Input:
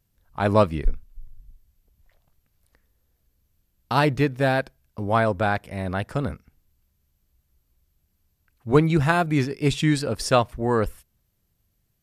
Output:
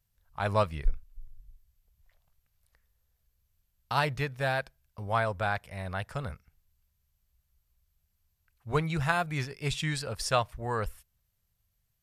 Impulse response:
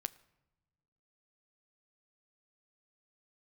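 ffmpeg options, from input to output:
-af "equalizer=f=290:t=o:w=1.3:g=-14.5,volume=-4.5dB"

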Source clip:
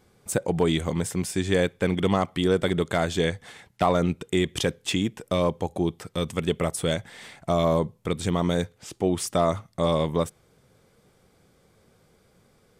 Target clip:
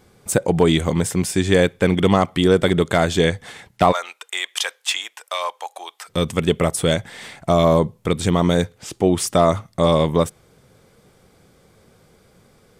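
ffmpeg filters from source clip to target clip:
-filter_complex "[0:a]asplit=3[a][b][c];[a]afade=t=out:st=3.91:d=0.02[d];[b]highpass=f=810:w=0.5412,highpass=f=810:w=1.3066,afade=t=in:st=3.91:d=0.02,afade=t=out:st=6.08:d=0.02[e];[c]afade=t=in:st=6.08:d=0.02[f];[d][e][f]amix=inputs=3:normalize=0,volume=7dB"

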